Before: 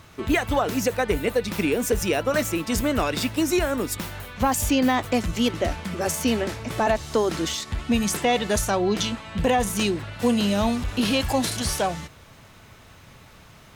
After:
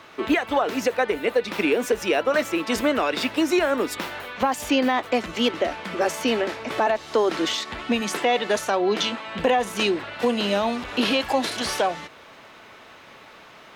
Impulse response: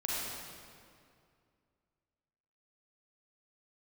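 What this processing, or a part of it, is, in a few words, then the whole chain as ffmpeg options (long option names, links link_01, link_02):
DJ mixer with the lows and highs turned down: -filter_complex "[0:a]asettb=1/sr,asplit=3[link_01][link_02][link_03];[link_01]atrim=end=8.014[link_04];[link_02]atrim=start=8.01:end=9.27,asetpts=PTS-STARTPTS,afade=type=in:duration=0.004:curve=qsin,afade=type=out:start_time=1.256:duration=0.004:curve=qsin,highpass=110[link_05];[link_03]atrim=start=9.266[link_06];[link_04][link_05]acrossfade=duration=0.004:curve1=hsin:curve2=qsin[link_07];[link_07][link_06]acrossfade=duration=0.004:curve1=qsin:curve2=hsin,acrossover=split=260 4500:gain=0.0794 1 0.224[link_08][link_09][link_10];[link_08][link_09][link_10]amix=inputs=3:normalize=0,alimiter=limit=-17.5dB:level=0:latency=1:release=376,volume=6dB"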